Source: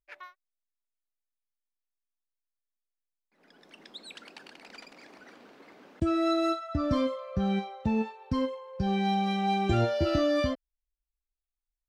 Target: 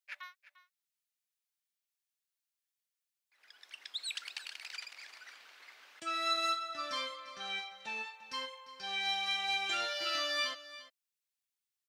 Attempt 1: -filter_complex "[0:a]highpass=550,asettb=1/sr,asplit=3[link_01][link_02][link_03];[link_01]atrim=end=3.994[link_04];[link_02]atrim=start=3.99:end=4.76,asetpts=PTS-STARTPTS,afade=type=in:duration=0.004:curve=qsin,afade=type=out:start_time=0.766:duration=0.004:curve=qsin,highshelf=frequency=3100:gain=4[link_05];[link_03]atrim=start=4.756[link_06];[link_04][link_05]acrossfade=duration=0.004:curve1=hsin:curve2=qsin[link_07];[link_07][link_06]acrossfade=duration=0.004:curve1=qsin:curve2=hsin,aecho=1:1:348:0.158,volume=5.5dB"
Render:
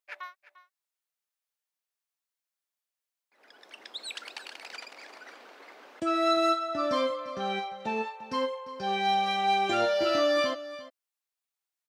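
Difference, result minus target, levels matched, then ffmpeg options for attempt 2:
500 Hz band +10.5 dB
-filter_complex "[0:a]highpass=1900,asettb=1/sr,asplit=3[link_01][link_02][link_03];[link_01]atrim=end=3.994[link_04];[link_02]atrim=start=3.99:end=4.76,asetpts=PTS-STARTPTS,afade=type=in:duration=0.004:curve=qsin,afade=type=out:start_time=0.766:duration=0.004:curve=qsin,highshelf=frequency=3100:gain=4[link_05];[link_03]atrim=start=4.756[link_06];[link_04][link_05]acrossfade=duration=0.004:curve1=hsin:curve2=qsin[link_07];[link_07][link_06]acrossfade=duration=0.004:curve1=qsin:curve2=hsin,aecho=1:1:348:0.158,volume=5.5dB"

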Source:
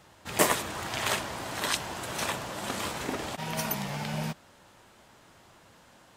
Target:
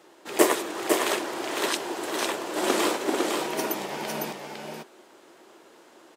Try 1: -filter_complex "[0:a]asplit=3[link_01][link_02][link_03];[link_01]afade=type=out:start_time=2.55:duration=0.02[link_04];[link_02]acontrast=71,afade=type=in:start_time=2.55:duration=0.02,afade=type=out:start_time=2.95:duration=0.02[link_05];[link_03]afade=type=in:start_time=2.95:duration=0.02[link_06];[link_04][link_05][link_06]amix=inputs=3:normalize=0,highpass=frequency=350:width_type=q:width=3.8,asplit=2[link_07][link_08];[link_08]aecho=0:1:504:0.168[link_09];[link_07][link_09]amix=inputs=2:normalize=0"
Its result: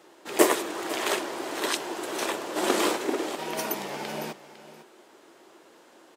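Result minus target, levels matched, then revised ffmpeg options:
echo-to-direct −11.5 dB
-filter_complex "[0:a]asplit=3[link_01][link_02][link_03];[link_01]afade=type=out:start_time=2.55:duration=0.02[link_04];[link_02]acontrast=71,afade=type=in:start_time=2.55:duration=0.02,afade=type=out:start_time=2.95:duration=0.02[link_05];[link_03]afade=type=in:start_time=2.95:duration=0.02[link_06];[link_04][link_05][link_06]amix=inputs=3:normalize=0,highpass=frequency=350:width_type=q:width=3.8,asplit=2[link_07][link_08];[link_08]aecho=0:1:504:0.631[link_09];[link_07][link_09]amix=inputs=2:normalize=0"

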